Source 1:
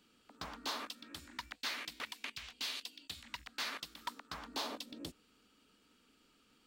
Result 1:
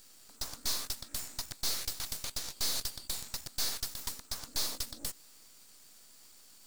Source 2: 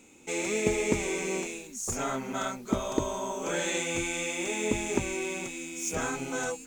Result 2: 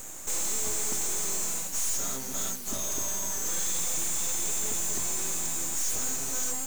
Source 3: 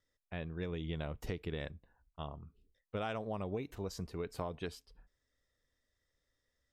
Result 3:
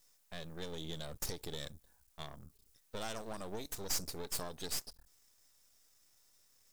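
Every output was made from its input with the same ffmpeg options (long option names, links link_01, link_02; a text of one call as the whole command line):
ffmpeg -i in.wav -af "aexciter=amount=6.3:drive=9.8:freq=4100,aeval=exprs='(tanh(10*val(0)+0.65)-tanh(0.65))/10':channel_layout=same,aeval=exprs='max(val(0),0)':channel_layout=same,volume=4.5dB" out.wav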